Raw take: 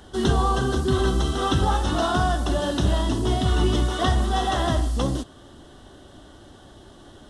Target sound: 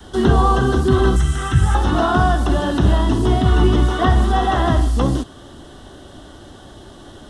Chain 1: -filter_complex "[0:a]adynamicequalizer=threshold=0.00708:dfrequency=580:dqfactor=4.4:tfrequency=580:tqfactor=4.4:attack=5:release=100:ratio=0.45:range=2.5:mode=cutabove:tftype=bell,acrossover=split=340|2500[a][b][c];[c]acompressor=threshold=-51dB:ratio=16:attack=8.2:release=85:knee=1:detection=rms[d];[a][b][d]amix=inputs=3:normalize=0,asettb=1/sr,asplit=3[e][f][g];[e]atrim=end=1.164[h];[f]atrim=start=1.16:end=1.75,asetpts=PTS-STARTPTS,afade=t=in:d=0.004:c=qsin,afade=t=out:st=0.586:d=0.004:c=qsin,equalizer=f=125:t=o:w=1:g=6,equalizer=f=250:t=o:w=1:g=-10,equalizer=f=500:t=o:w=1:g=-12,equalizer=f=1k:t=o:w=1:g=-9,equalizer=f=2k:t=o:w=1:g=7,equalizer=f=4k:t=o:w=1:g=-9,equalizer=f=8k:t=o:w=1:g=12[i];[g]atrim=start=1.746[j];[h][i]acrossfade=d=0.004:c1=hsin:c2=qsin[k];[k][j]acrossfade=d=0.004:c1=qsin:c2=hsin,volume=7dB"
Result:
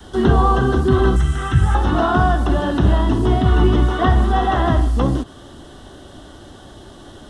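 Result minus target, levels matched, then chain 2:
compressor: peak gain reduction +6.5 dB
-filter_complex "[0:a]adynamicequalizer=threshold=0.00708:dfrequency=580:dqfactor=4.4:tfrequency=580:tqfactor=4.4:attack=5:release=100:ratio=0.45:range=2.5:mode=cutabove:tftype=bell,acrossover=split=340|2500[a][b][c];[c]acompressor=threshold=-44dB:ratio=16:attack=8.2:release=85:knee=1:detection=rms[d];[a][b][d]amix=inputs=3:normalize=0,asettb=1/sr,asplit=3[e][f][g];[e]atrim=end=1.164[h];[f]atrim=start=1.16:end=1.75,asetpts=PTS-STARTPTS,afade=t=in:d=0.004:c=qsin,afade=t=out:st=0.586:d=0.004:c=qsin,equalizer=f=125:t=o:w=1:g=6,equalizer=f=250:t=o:w=1:g=-10,equalizer=f=500:t=o:w=1:g=-12,equalizer=f=1k:t=o:w=1:g=-9,equalizer=f=2k:t=o:w=1:g=7,equalizer=f=4k:t=o:w=1:g=-9,equalizer=f=8k:t=o:w=1:g=12[i];[g]atrim=start=1.746[j];[h][i]acrossfade=d=0.004:c1=hsin:c2=qsin[k];[k][j]acrossfade=d=0.004:c1=qsin:c2=hsin,volume=7dB"

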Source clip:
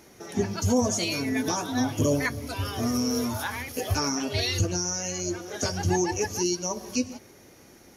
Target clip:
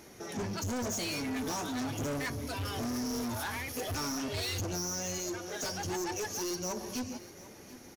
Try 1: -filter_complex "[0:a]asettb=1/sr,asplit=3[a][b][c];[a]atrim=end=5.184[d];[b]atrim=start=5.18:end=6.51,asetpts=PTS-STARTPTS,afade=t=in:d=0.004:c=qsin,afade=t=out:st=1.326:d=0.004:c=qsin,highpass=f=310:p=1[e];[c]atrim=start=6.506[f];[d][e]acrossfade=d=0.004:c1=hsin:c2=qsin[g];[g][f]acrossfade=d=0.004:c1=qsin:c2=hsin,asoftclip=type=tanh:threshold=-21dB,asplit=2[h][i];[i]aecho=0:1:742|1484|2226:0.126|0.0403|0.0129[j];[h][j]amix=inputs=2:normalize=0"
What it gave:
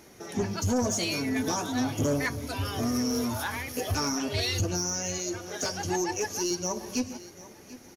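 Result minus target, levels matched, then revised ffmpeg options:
soft clip: distortion -9 dB
-filter_complex "[0:a]asettb=1/sr,asplit=3[a][b][c];[a]atrim=end=5.184[d];[b]atrim=start=5.18:end=6.51,asetpts=PTS-STARTPTS,afade=t=in:d=0.004:c=qsin,afade=t=out:st=1.326:d=0.004:c=qsin,highpass=f=310:p=1[e];[c]atrim=start=6.506[f];[d][e]acrossfade=d=0.004:c1=hsin:c2=qsin[g];[g][f]acrossfade=d=0.004:c1=qsin:c2=hsin,asoftclip=type=tanh:threshold=-32.5dB,asplit=2[h][i];[i]aecho=0:1:742|1484|2226:0.126|0.0403|0.0129[j];[h][j]amix=inputs=2:normalize=0"

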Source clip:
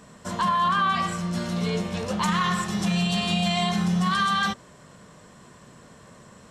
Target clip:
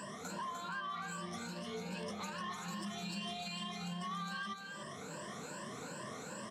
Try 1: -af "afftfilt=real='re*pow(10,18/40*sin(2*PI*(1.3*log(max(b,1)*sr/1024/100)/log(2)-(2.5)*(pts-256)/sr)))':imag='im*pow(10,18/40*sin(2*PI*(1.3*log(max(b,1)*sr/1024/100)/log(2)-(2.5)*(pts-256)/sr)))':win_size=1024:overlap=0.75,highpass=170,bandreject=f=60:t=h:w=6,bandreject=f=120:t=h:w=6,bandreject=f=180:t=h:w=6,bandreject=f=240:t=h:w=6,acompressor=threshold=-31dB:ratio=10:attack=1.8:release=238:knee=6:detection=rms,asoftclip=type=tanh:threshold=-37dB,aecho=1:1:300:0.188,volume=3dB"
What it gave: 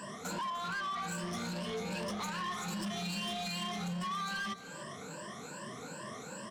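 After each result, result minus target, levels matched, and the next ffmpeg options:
compressor: peak gain reduction -9 dB; echo-to-direct -9 dB
-af "afftfilt=real='re*pow(10,18/40*sin(2*PI*(1.3*log(max(b,1)*sr/1024/100)/log(2)-(2.5)*(pts-256)/sr)))':imag='im*pow(10,18/40*sin(2*PI*(1.3*log(max(b,1)*sr/1024/100)/log(2)-(2.5)*(pts-256)/sr)))':win_size=1024:overlap=0.75,highpass=170,bandreject=f=60:t=h:w=6,bandreject=f=120:t=h:w=6,bandreject=f=180:t=h:w=6,bandreject=f=240:t=h:w=6,acompressor=threshold=-41dB:ratio=10:attack=1.8:release=238:knee=6:detection=rms,asoftclip=type=tanh:threshold=-37dB,aecho=1:1:300:0.188,volume=3dB"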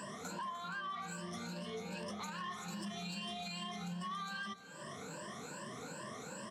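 echo-to-direct -9 dB
-af "afftfilt=real='re*pow(10,18/40*sin(2*PI*(1.3*log(max(b,1)*sr/1024/100)/log(2)-(2.5)*(pts-256)/sr)))':imag='im*pow(10,18/40*sin(2*PI*(1.3*log(max(b,1)*sr/1024/100)/log(2)-(2.5)*(pts-256)/sr)))':win_size=1024:overlap=0.75,highpass=170,bandreject=f=60:t=h:w=6,bandreject=f=120:t=h:w=6,bandreject=f=180:t=h:w=6,bandreject=f=240:t=h:w=6,acompressor=threshold=-41dB:ratio=10:attack=1.8:release=238:knee=6:detection=rms,asoftclip=type=tanh:threshold=-37dB,aecho=1:1:300:0.531,volume=3dB"

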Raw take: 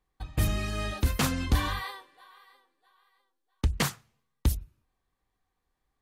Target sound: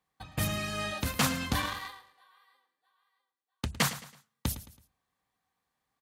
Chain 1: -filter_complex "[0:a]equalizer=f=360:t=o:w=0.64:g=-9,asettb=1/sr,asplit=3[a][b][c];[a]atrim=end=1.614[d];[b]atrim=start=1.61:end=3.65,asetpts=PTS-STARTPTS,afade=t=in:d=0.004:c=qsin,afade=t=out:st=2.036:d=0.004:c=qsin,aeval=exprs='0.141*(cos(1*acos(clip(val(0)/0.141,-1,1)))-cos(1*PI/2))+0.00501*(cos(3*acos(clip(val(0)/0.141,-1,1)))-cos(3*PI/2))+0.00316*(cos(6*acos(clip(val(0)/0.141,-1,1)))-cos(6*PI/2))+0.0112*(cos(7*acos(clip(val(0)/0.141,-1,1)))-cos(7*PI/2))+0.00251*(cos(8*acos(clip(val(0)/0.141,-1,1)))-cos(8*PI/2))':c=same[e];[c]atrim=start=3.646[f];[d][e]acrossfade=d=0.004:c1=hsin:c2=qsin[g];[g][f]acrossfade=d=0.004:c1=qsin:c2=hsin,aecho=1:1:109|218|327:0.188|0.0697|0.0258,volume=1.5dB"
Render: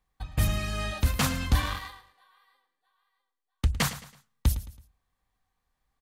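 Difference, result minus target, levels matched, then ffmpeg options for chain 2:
125 Hz band +4.0 dB
-filter_complex "[0:a]highpass=140,equalizer=f=360:t=o:w=0.64:g=-9,asettb=1/sr,asplit=3[a][b][c];[a]atrim=end=1.614[d];[b]atrim=start=1.61:end=3.65,asetpts=PTS-STARTPTS,afade=t=in:d=0.004:c=qsin,afade=t=out:st=2.036:d=0.004:c=qsin,aeval=exprs='0.141*(cos(1*acos(clip(val(0)/0.141,-1,1)))-cos(1*PI/2))+0.00501*(cos(3*acos(clip(val(0)/0.141,-1,1)))-cos(3*PI/2))+0.00316*(cos(6*acos(clip(val(0)/0.141,-1,1)))-cos(6*PI/2))+0.0112*(cos(7*acos(clip(val(0)/0.141,-1,1)))-cos(7*PI/2))+0.00251*(cos(8*acos(clip(val(0)/0.141,-1,1)))-cos(8*PI/2))':c=same[e];[c]atrim=start=3.646[f];[d][e]acrossfade=d=0.004:c1=hsin:c2=qsin[g];[g][f]acrossfade=d=0.004:c1=qsin:c2=hsin,aecho=1:1:109|218|327:0.188|0.0697|0.0258,volume=1.5dB"

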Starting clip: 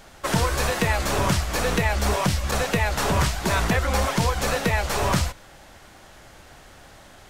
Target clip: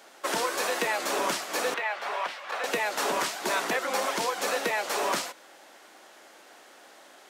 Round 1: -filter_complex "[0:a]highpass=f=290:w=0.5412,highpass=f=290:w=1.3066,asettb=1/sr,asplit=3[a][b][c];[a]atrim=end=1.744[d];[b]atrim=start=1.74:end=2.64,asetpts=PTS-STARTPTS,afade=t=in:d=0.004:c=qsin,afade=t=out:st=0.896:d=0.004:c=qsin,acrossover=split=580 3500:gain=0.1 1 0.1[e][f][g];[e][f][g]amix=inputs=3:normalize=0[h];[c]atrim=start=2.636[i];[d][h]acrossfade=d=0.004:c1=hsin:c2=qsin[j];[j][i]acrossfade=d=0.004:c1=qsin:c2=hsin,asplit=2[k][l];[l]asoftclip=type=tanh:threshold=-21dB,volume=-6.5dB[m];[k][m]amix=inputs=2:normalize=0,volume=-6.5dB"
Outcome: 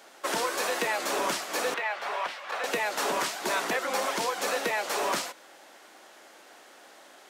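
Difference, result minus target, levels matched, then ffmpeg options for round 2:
soft clip: distortion +15 dB
-filter_complex "[0:a]highpass=f=290:w=0.5412,highpass=f=290:w=1.3066,asettb=1/sr,asplit=3[a][b][c];[a]atrim=end=1.744[d];[b]atrim=start=1.74:end=2.64,asetpts=PTS-STARTPTS,afade=t=in:d=0.004:c=qsin,afade=t=out:st=0.896:d=0.004:c=qsin,acrossover=split=580 3500:gain=0.1 1 0.1[e][f][g];[e][f][g]amix=inputs=3:normalize=0[h];[c]atrim=start=2.636[i];[d][h]acrossfade=d=0.004:c1=hsin:c2=qsin[j];[j][i]acrossfade=d=0.004:c1=qsin:c2=hsin,asplit=2[k][l];[l]asoftclip=type=tanh:threshold=-11dB,volume=-6.5dB[m];[k][m]amix=inputs=2:normalize=0,volume=-6.5dB"

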